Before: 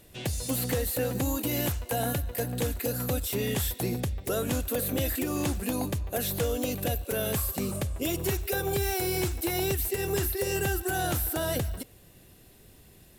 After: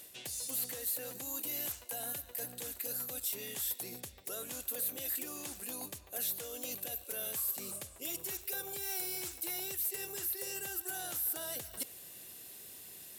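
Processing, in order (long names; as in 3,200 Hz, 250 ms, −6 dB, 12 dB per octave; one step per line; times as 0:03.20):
reversed playback
downward compressor 16 to 1, threshold −39 dBFS, peak gain reduction 16.5 dB
reversed playback
high-pass filter 480 Hz 6 dB per octave
high-shelf EQ 3,700 Hz +11 dB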